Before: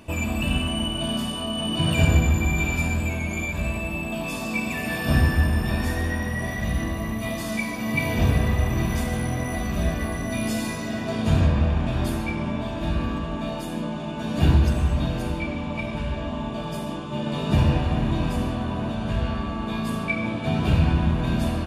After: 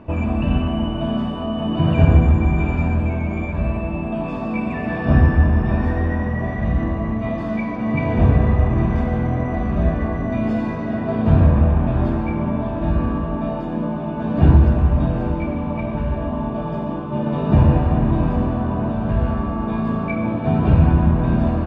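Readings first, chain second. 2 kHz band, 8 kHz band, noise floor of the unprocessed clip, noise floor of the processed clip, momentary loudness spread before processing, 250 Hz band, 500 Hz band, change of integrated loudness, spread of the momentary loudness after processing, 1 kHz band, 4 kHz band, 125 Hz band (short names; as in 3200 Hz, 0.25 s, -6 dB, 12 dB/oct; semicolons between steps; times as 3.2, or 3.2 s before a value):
-2.5 dB, under -20 dB, -31 dBFS, -25 dBFS, 9 LU, +6.0 dB, +6.0 dB, +5.0 dB, 9 LU, +5.0 dB, n/a, +6.0 dB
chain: LPF 1300 Hz 12 dB/oct; gain +6 dB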